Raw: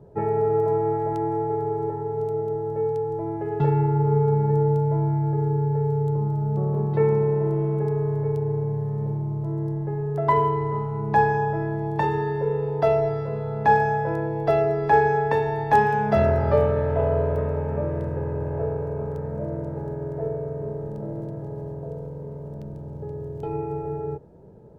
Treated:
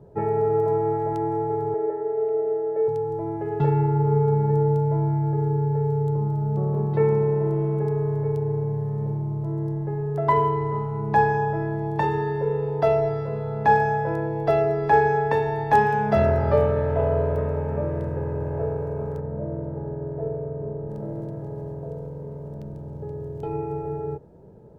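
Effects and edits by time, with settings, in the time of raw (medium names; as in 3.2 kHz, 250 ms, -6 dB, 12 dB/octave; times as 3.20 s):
1.74–2.88 s: cabinet simulation 380–2500 Hz, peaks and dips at 390 Hz +8 dB, 630 Hz +9 dB, 960 Hz -9 dB, 1.9 kHz +5 dB
19.20–20.90 s: low-pass 1 kHz 6 dB/octave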